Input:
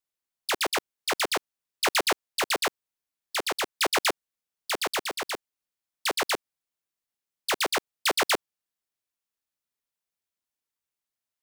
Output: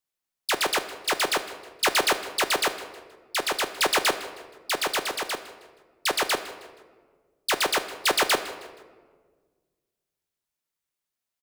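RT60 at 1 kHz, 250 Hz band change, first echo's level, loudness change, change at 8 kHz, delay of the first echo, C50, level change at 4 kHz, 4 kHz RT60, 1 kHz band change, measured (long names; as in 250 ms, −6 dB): 1.4 s, +2.5 dB, −17.0 dB, +2.5 dB, +2.5 dB, 158 ms, 11.0 dB, +2.5 dB, 0.95 s, +2.5 dB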